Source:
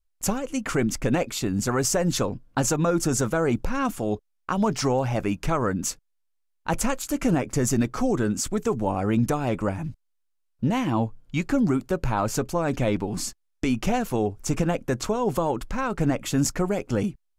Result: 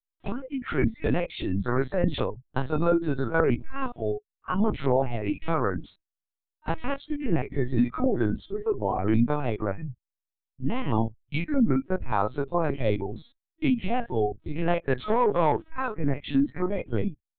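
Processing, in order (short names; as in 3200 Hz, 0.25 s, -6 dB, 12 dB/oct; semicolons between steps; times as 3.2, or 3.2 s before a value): stepped spectrum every 50 ms; spectral noise reduction 21 dB; 14.63–15.7 overdrive pedal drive 16 dB, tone 2200 Hz, clips at -14.5 dBFS; LPC vocoder at 8 kHz pitch kept; gain +1.5 dB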